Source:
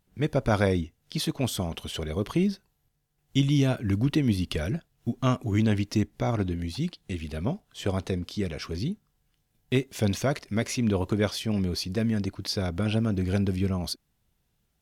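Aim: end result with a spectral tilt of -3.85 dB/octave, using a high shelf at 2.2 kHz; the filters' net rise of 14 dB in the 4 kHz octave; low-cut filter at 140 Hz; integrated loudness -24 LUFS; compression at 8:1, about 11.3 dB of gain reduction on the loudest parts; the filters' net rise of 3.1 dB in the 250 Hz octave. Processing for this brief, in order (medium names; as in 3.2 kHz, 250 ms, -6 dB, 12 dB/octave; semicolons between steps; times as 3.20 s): high-pass 140 Hz; peaking EQ 250 Hz +4.5 dB; treble shelf 2.2 kHz +9 dB; peaking EQ 4 kHz +9 dB; compression 8:1, threshold -25 dBFS; trim +6 dB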